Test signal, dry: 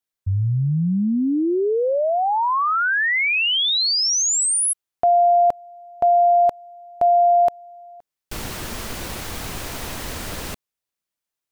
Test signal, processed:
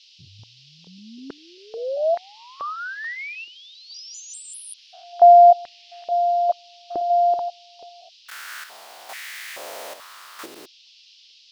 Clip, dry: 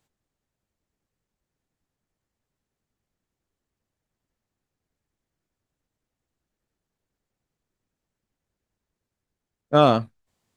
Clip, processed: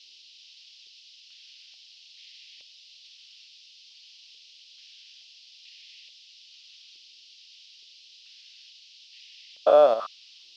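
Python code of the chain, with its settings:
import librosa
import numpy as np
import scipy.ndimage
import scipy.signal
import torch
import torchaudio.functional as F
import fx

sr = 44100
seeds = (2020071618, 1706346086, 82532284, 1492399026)

y = fx.spec_steps(x, sr, hold_ms=200)
y = fx.chopper(y, sr, hz=0.77, depth_pct=60, duty_pct=65)
y = fx.dmg_noise_band(y, sr, seeds[0], low_hz=2700.0, high_hz=5400.0, level_db=-48.0)
y = fx.filter_held_highpass(y, sr, hz=2.3, low_hz=350.0, high_hz=1900.0)
y = y * 10.0 ** (-4.5 / 20.0)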